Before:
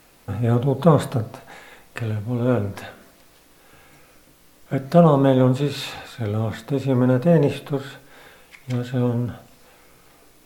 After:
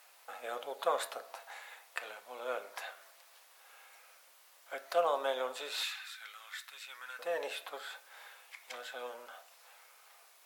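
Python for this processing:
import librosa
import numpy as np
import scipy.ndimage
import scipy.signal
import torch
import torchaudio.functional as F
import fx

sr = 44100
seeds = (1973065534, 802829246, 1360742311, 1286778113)

y = fx.dynamic_eq(x, sr, hz=920.0, q=1.6, threshold_db=-35.0, ratio=4.0, max_db=-6)
y = fx.highpass(y, sr, hz=fx.steps((0.0, 660.0), (5.83, 1400.0), (7.19, 690.0)), slope=24)
y = F.gain(torch.from_numpy(y), -5.5).numpy()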